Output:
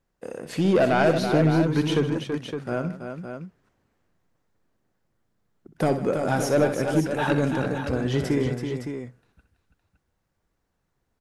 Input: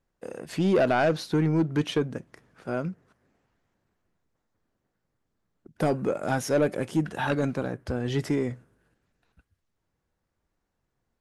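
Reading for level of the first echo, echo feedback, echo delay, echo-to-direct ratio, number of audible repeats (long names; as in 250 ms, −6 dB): −10.5 dB, repeats not evenly spaced, 63 ms, −3.5 dB, 4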